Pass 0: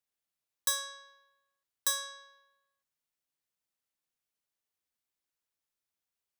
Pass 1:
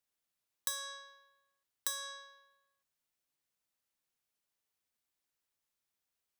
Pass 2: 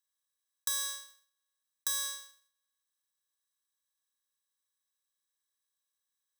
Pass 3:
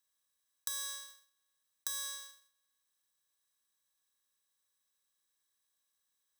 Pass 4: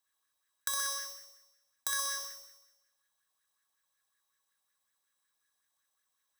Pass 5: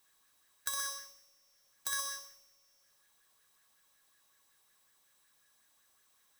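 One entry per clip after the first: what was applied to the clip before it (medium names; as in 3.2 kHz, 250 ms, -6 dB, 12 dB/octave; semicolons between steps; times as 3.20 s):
compression 6:1, threshold -35 dBFS, peak gain reduction 10 dB; trim +1.5 dB
spectral levelling over time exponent 0.2; gate -36 dBFS, range -45 dB; tilt shelf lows -6 dB, about 780 Hz; trim -3.5 dB
compression 3:1, threshold -43 dBFS, peak gain reduction 11 dB; trim +4 dB
waveshaping leveller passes 1; on a send: flutter echo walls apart 10.8 m, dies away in 0.99 s; on the sum: sweeping bell 5.4 Hz 750–1800 Hz +12 dB
jump at every zero crossing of -40 dBFS; upward expansion 2.5:1, over -45 dBFS; trim -1.5 dB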